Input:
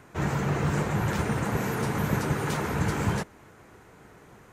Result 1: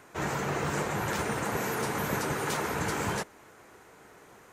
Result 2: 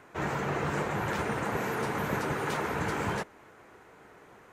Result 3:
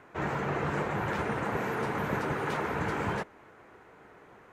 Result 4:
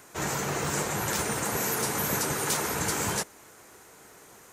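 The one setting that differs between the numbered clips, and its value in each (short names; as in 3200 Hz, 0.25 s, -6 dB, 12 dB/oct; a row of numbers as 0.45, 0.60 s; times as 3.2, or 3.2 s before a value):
tone controls, treble: +3, -6, -14, +14 dB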